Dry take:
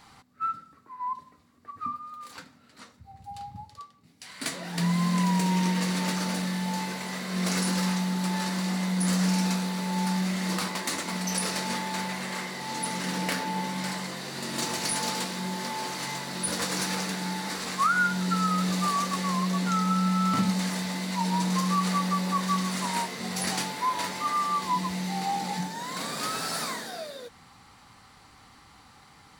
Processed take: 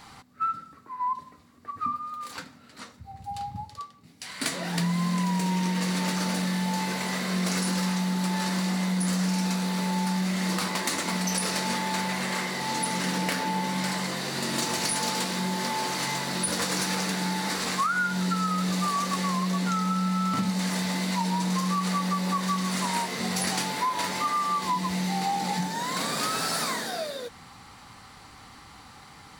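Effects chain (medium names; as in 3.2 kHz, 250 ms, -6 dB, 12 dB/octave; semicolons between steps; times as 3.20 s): compression 4:1, threshold -30 dBFS, peak gain reduction 9 dB; trim +5.5 dB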